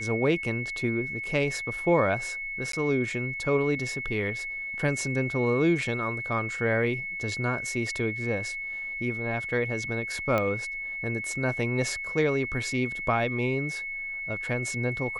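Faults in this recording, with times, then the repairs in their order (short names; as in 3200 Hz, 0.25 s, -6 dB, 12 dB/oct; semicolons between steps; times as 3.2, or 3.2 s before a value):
tone 2200 Hz -32 dBFS
2.72–2.73 gap 13 ms
10.38 pop -14 dBFS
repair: de-click; notch 2200 Hz, Q 30; interpolate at 2.72, 13 ms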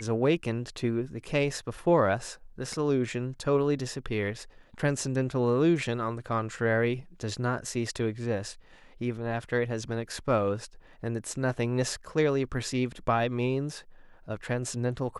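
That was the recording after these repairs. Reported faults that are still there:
none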